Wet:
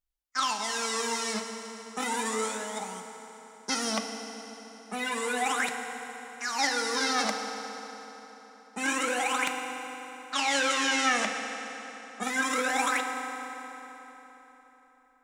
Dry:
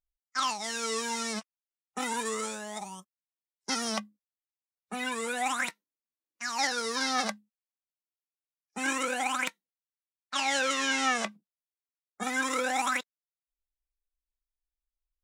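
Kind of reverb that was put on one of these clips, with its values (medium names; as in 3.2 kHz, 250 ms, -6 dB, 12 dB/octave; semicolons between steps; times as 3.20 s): FDN reverb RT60 4 s, high-frequency decay 0.75×, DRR 4 dB; trim +1 dB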